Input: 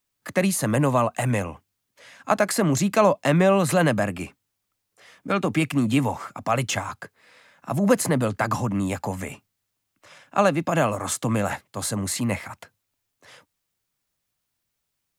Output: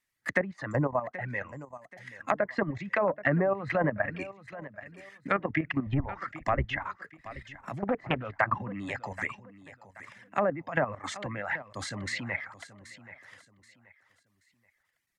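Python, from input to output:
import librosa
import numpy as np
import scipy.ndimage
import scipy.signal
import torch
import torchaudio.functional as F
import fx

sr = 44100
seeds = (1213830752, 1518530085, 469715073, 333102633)

y = fx.octave_divider(x, sr, octaves=1, level_db=0.0, at=(5.86, 6.65))
y = fx.dereverb_blind(y, sr, rt60_s=1.2)
y = fx.resample_bad(y, sr, factor=6, down='filtered', up='zero_stuff', at=(0.71, 1.13))
y = fx.env_lowpass_down(y, sr, base_hz=930.0, full_db=-16.5)
y = fx.dynamic_eq(y, sr, hz=210.0, q=0.97, threshold_db=-33.0, ratio=4.0, max_db=-5)
y = fx.level_steps(y, sr, step_db=12)
y = fx.peak_eq(y, sr, hz=1900.0, db=14.5, octaves=0.44)
y = fx.notch(y, sr, hz=450.0, q=12.0)
y = fx.echo_feedback(y, sr, ms=779, feedback_pct=31, wet_db=-16.0)
y = fx.env_lowpass_down(y, sr, base_hz=1700.0, full_db=-23.0)
y = fx.doppler_dist(y, sr, depth_ms=0.61, at=(7.78, 8.43))
y = F.gain(torch.from_numpy(y), -1.0).numpy()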